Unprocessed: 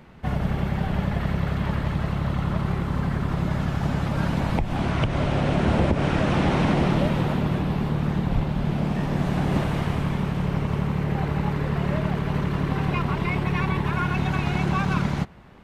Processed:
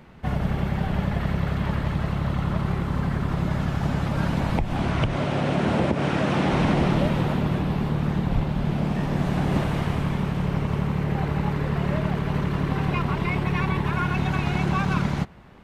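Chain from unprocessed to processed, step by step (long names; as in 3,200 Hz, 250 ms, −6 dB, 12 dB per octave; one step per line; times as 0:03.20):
0:05.15–0:06.51: high-pass filter 120 Hz 12 dB per octave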